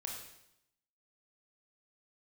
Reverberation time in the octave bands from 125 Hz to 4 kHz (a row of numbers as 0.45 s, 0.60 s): 0.90 s, 0.90 s, 0.80 s, 0.80 s, 0.75 s, 0.80 s